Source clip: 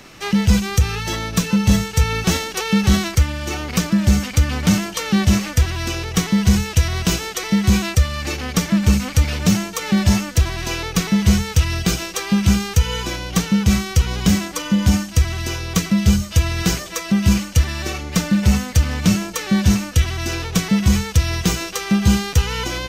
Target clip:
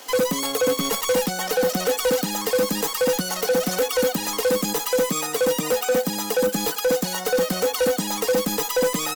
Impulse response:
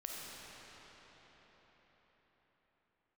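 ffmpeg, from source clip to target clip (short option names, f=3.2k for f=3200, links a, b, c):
-af "highpass=130,asetrate=110250,aresample=44100,asoftclip=type=hard:threshold=-19.5dB,aecho=1:1:3.9:0.47"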